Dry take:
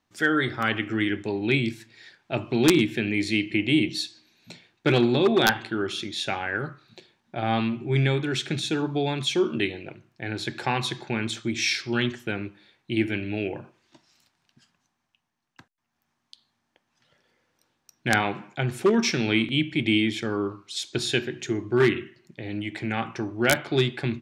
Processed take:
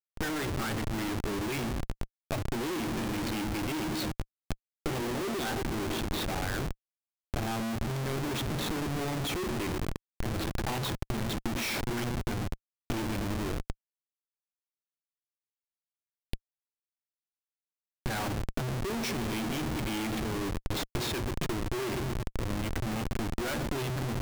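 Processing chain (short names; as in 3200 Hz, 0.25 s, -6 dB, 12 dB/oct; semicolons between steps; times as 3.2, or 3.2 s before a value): darkening echo 0.115 s, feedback 79%, low-pass 840 Hz, level -12 dB; Schmitt trigger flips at -30 dBFS; power-law curve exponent 2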